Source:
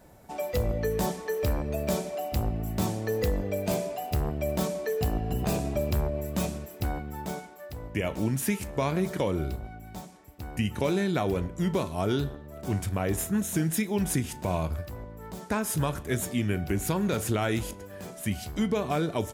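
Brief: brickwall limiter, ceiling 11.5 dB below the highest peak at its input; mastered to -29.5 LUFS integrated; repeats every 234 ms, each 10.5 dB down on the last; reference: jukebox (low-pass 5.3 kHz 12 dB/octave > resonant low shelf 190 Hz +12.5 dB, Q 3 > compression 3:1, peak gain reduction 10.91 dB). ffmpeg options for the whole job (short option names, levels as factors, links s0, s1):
-af "alimiter=level_in=1.5:limit=0.0631:level=0:latency=1,volume=0.668,lowpass=5300,lowshelf=f=190:t=q:w=3:g=12.5,aecho=1:1:234|468|702:0.299|0.0896|0.0269,acompressor=threshold=0.0398:ratio=3,volume=1.26"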